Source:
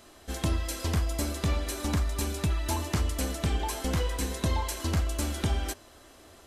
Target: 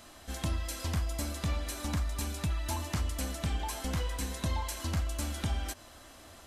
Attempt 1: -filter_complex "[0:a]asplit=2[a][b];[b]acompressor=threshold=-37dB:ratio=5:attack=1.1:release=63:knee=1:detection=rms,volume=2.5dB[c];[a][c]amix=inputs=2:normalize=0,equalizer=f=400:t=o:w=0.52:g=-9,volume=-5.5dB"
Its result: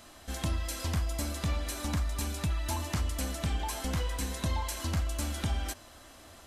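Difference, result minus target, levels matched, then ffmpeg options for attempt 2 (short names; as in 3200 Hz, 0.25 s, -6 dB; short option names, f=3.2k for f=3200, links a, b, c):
compressor: peak gain reduction -6 dB
-filter_complex "[0:a]asplit=2[a][b];[b]acompressor=threshold=-44.5dB:ratio=5:attack=1.1:release=63:knee=1:detection=rms,volume=2.5dB[c];[a][c]amix=inputs=2:normalize=0,equalizer=f=400:t=o:w=0.52:g=-9,volume=-5.5dB"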